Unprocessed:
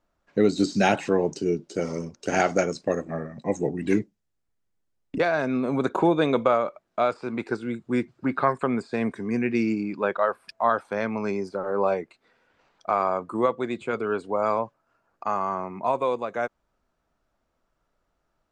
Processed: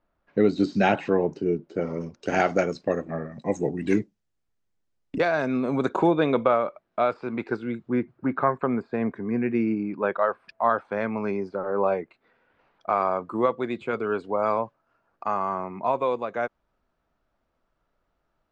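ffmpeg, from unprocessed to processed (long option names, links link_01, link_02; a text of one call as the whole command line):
ffmpeg -i in.wav -af "asetnsamples=nb_out_samples=441:pad=0,asendcmd='1.27 lowpass f 2000;2.01 lowpass f 4100;3.32 lowpass f 7500;6.11 lowpass f 3500;7.89 lowpass f 1800;10.05 lowpass f 2800;12.9 lowpass f 4400',lowpass=3100" out.wav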